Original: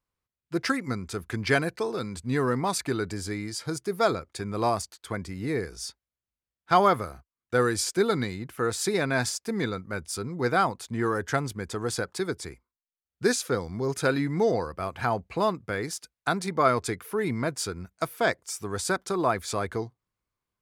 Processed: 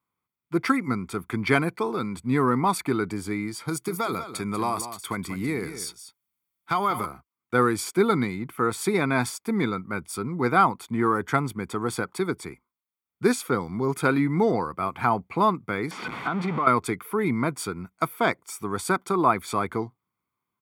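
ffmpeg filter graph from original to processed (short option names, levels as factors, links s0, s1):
-filter_complex "[0:a]asettb=1/sr,asplit=3[s0][s1][s2];[s0]atrim=end=3.684[s3];[s1]atrim=start=3.68:end=7.06,asetpts=PTS-STARTPTS,afade=t=in:d=0.004:c=qsin,afade=t=out:st=3.376:d=0.004:c=qsin,highshelf=f=2800:g=10.5,acompressor=threshold=0.0501:ratio=4:attack=3.2:release=140:knee=1:detection=peak,aecho=1:1:192:0.282,atrim=end_sample=149058[s4];[s2]atrim=start=7.056[s5];[s3][s4]acrossfade=d=0.004:c1=hsin:c2=qsin[s6];[s6][s5]acrossfade=d=0.004:c1=qsin:c2=hsin,asettb=1/sr,asplit=3[s7][s8][s9];[s7]atrim=end=15.914[s10];[s8]atrim=start=15.91:end=16.67,asetpts=PTS-STARTPTS,afade=t=in:d=0.004:c=qsin,afade=t=out:st=0.756:d=0.004:c=qsin,aeval=exprs='val(0)+0.5*0.0668*sgn(val(0))':c=same,highpass=130,lowpass=2800,acompressor=threshold=0.0447:ratio=5:attack=3.2:release=140:knee=1:detection=peak[s11];[s9]atrim=start=16.666[s12];[s10][s11]acrossfade=d=0.004:c1=hsin:c2=qsin[s13];[s13][s12]acrossfade=d=0.004:c1=qsin:c2=hsin,highpass=170,equalizer=f=5800:w=0.84:g=-12.5,aecho=1:1:0.9:0.55,volume=1.68"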